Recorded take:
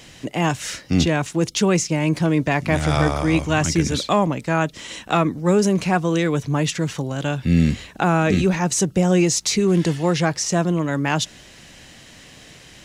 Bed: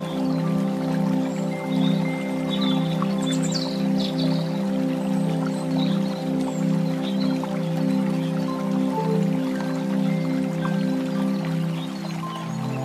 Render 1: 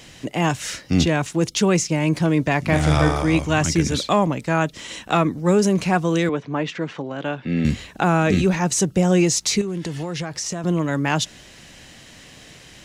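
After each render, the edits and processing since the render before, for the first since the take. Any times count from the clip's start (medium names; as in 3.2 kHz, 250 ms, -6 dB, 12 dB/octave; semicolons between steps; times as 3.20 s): 2.63–3.22 s: flutter echo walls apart 6.7 m, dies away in 0.31 s; 6.29–7.65 s: band-pass 240–2700 Hz; 9.61–10.64 s: compression 10:1, threshold -23 dBFS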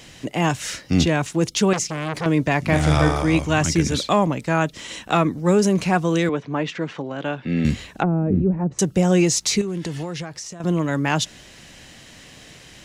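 1.73–2.26 s: transformer saturation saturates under 1.6 kHz; 7.93–8.79 s: low-pass that closes with the level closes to 400 Hz, closed at -15.5 dBFS; 9.96–10.60 s: fade out, to -11 dB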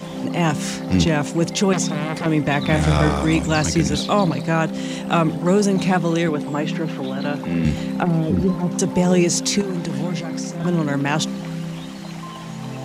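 add bed -3.5 dB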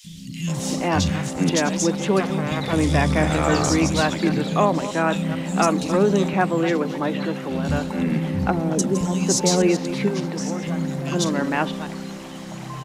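chunks repeated in reverse 148 ms, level -12 dB; three bands offset in time highs, lows, mids 40/470 ms, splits 180/3000 Hz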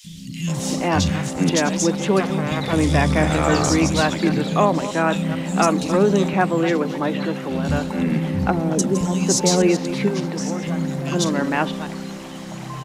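trim +1.5 dB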